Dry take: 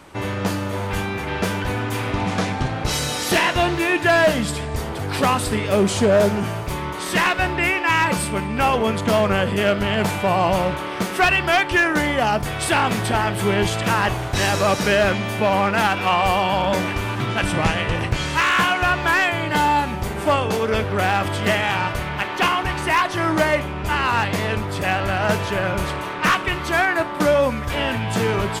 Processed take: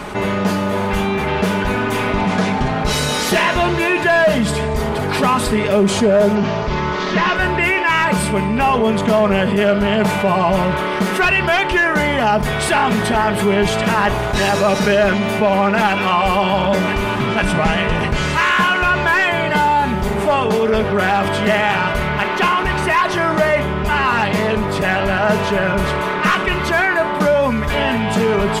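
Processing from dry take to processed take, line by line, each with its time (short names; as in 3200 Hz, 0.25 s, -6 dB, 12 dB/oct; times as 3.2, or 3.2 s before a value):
6.35–7.36 CVSD 32 kbps
whole clip: high shelf 3800 Hz -7 dB; comb 4.8 ms, depth 62%; fast leveller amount 50%; gain -1.5 dB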